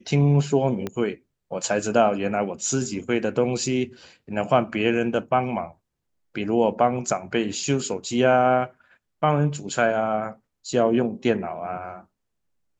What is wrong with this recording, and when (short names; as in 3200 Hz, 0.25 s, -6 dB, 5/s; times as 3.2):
0.87 pop -15 dBFS